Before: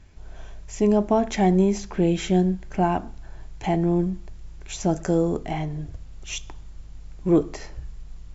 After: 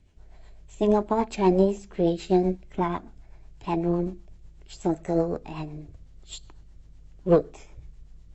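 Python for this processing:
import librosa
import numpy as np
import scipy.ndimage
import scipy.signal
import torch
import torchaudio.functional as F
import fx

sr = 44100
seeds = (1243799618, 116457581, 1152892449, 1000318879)

y = fx.rotary(x, sr, hz=8.0)
y = fx.formant_shift(y, sr, semitones=4)
y = fx.upward_expand(y, sr, threshold_db=-34.0, expansion=1.5)
y = y * 10.0 ** (1.5 / 20.0)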